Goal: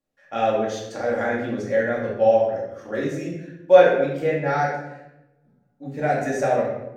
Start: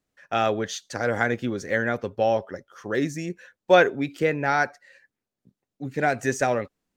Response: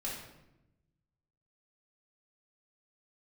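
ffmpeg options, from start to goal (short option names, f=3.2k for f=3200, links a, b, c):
-filter_complex "[0:a]equalizer=f=580:w=1.1:g=6.5[a];[1:a]atrim=start_sample=2205[b];[a][b]afir=irnorm=-1:irlink=0,volume=-5dB"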